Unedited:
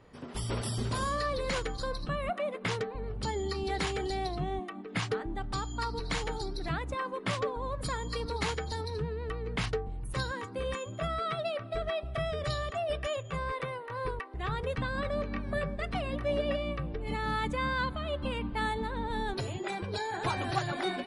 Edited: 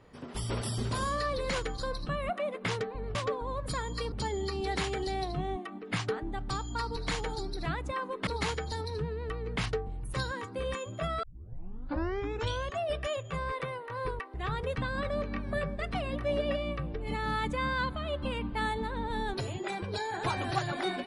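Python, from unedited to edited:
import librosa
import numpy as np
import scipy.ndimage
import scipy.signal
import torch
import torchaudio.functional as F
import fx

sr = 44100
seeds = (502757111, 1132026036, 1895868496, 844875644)

y = fx.edit(x, sr, fx.move(start_s=7.3, length_s=0.97, to_s=3.15),
    fx.tape_start(start_s=11.23, length_s=1.55), tone=tone)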